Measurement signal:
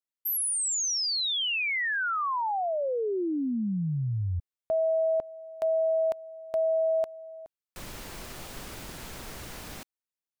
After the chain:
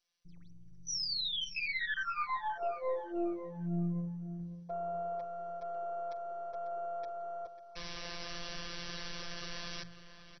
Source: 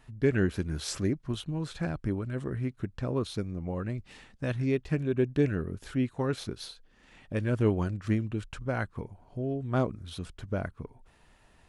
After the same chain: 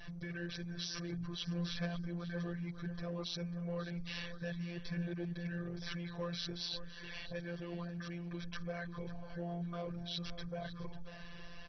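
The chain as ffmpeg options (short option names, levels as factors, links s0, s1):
-filter_complex "[0:a]equalizer=f=6200:t=o:w=2.4:g=7,aecho=1:1:1.8:0.59,bandreject=f=51.16:t=h:w=4,bandreject=f=102.32:t=h:w=4,bandreject=f=153.48:t=h:w=4,bandreject=f=204.64:t=h:w=4,adynamicequalizer=threshold=0.00355:dfrequency=1100:dqfactor=6.1:tfrequency=1100:tqfactor=6.1:attack=5:release=100:ratio=0.375:range=2:mode=cutabove:tftype=bell,alimiter=level_in=1.12:limit=0.0631:level=0:latency=1:release=170,volume=0.891,areverse,acompressor=threshold=0.00794:ratio=8:attack=0.17:release=64:knee=1:detection=peak,areverse,afftfilt=real='hypot(re,im)*cos(PI*b)':imag='0':win_size=1024:overlap=0.75,aeval=exprs='0.0355*(cos(1*acos(clip(val(0)/0.0355,-1,1)))-cos(1*PI/2))+0.00501*(cos(2*acos(clip(val(0)/0.0355,-1,1)))-cos(2*PI/2))+0.00224*(cos(8*acos(clip(val(0)/0.0355,-1,1)))-cos(8*PI/2))':c=same,asplit=2[s0][s1];[s1]adelay=545,lowpass=f=3600:p=1,volume=0.266,asplit=2[s2][s3];[s3]adelay=545,lowpass=f=3600:p=1,volume=0.31,asplit=2[s4][s5];[s5]adelay=545,lowpass=f=3600:p=1,volume=0.31[s6];[s2][s4][s6]amix=inputs=3:normalize=0[s7];[s0][s7]amix=inputs=2:normalize=0,volume=3.35" -ar 24000 -c:a mp2 -b:a 32k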